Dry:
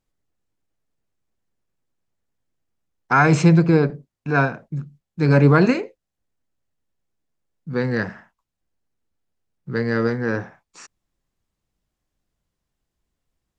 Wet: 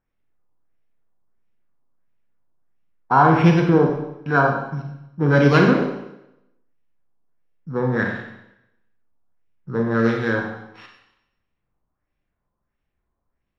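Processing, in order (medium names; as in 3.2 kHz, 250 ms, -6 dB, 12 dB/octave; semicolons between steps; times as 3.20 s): sorted samples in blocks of 8 samples; LFO low-pass sine 1.5 Hz 950–2700 Hz; Schroeder reverb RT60 0.85 s, combs from 31 ms, DRR 2 dB; trim -1.5 dB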